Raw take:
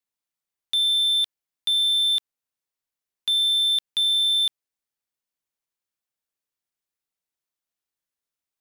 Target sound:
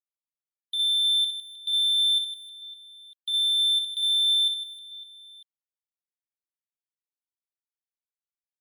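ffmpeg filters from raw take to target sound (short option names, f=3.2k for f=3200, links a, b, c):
-filter_complex "[0:a]afftdn=nr=17:nf=-37,asplit=2[a][b];[b]aecho=0:1:60|156|309.6|555.4|948.6:0.631|0.398|0.251|0.158|0.1[c];[a][c]amix=inputs=2:normalize=0,volume=-7dB"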